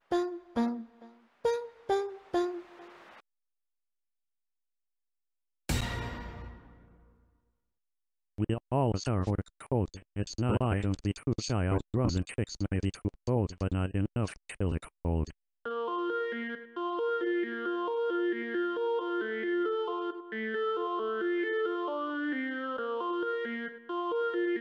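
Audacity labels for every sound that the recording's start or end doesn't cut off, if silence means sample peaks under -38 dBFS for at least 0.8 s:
5.690000	6.500000	sound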